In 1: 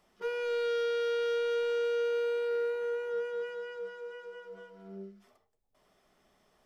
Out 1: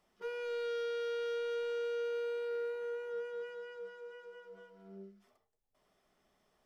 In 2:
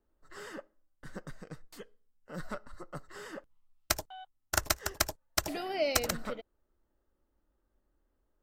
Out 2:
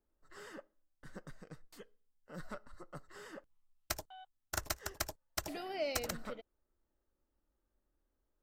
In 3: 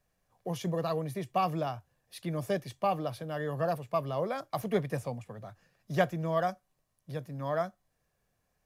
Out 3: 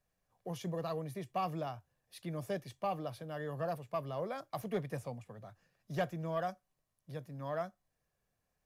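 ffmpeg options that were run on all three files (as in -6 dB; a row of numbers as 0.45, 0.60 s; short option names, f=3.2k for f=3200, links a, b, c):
-af "asoftclip=type=tanh:threshold=-17.5dB,volume=-6dB"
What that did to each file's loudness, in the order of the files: -6.0, -8.5, -6.5 LU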